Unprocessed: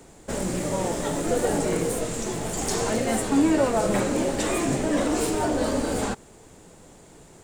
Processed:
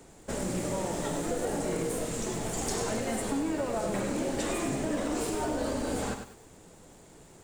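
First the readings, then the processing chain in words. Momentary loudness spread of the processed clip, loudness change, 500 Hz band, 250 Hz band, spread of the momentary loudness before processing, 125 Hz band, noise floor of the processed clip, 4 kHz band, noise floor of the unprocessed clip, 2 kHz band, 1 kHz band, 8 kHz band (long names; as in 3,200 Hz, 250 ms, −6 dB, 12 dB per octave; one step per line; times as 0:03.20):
2 LU, −7.0 dB, −7.0 dB, −7.5 dB, 7 LU, −6.0 dB, −54 dBFS, −6.0 dB, −50 dBFS, −6.5 dB, −6.5 dB, −6.0 dB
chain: downward compressor, threshold −24 dBFS, peak gain reduction 8.5 dB
feedback echo at a low word length 99 ms, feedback 35%, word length 8 bits, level −7 dB
level −4 dB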